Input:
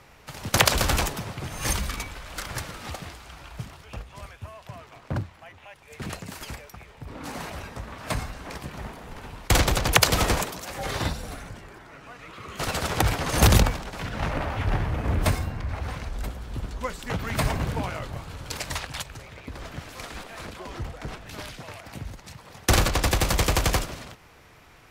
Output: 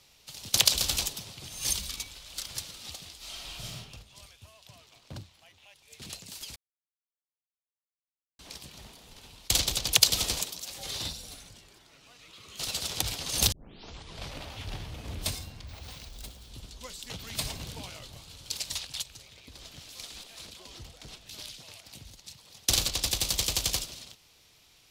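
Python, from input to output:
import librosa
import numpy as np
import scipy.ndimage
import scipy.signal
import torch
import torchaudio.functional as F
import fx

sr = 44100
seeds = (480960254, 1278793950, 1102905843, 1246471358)

y = fx.reverb_throw(x, sr, start_s=3.17, length_s=0.58, rt60_s=0.85, drr_db=-10.5)
y = fx.resample_bad(y, sr, factor=2, down='none', up='hold', at=(15.67, 16.49))
y = fx.edit(y, sr, fx.silence(start_s=6.56, length_s=1.83),
    fx.tape_start(start_s=13.52, length_s=0.83), tone=tone)
y = fx.high_shelf_res(y, sr, hz=2500.0, db=13.5, q=1.5)
y = y * 10.0 ** (-14.0 / 20.0)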